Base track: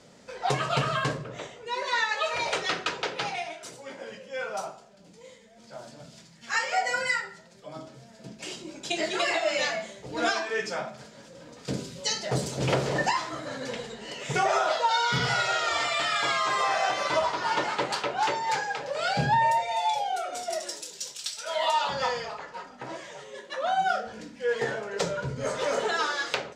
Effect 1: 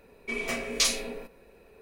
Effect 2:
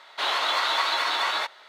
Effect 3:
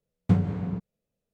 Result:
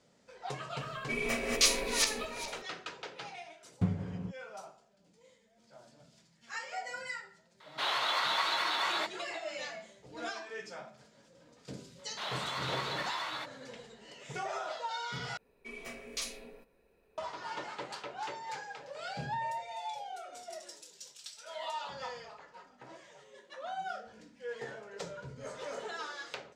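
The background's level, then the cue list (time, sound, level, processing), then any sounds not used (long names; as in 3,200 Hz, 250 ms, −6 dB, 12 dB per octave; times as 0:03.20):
base track −13.5 dB
0:00.81: mix in 1 −2.5 dB + feedback delay that plays each chunk backwards 206 ms, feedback 43%, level −1.5 dB
0:03.52: mix in 3 −9 dB
0:07.60: mix in 2 −6.5 dB
0:11.99: mix in 2 −13 dB
0:15.37: overwrite with 1 −13.5 dB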